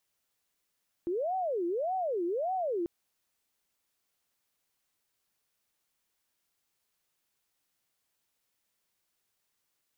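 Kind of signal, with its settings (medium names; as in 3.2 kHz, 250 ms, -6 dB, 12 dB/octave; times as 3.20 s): siren wail 340–758 Hz 1.7 per s sine -28.5 dBFS 1.79 s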